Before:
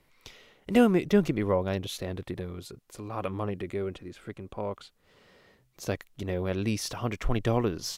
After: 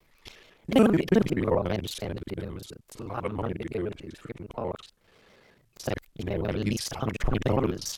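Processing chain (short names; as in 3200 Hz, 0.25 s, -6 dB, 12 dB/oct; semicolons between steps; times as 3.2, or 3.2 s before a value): local time reversal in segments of 36 ms; shaped vibrato square 7 Hz, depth 160 cents; gain +1.5 dB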